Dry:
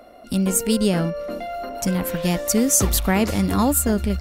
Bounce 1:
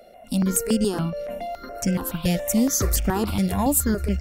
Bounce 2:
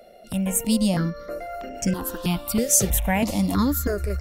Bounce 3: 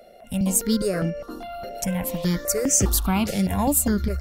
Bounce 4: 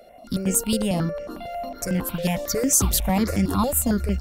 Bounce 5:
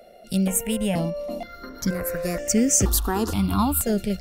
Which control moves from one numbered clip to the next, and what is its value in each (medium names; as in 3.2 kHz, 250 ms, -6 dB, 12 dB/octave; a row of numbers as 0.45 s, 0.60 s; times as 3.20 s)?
stepped phaser, rate: 7.1 Hz, 3.1 Hz, 4.9 Hz, 11 Hz, 2.1 Hz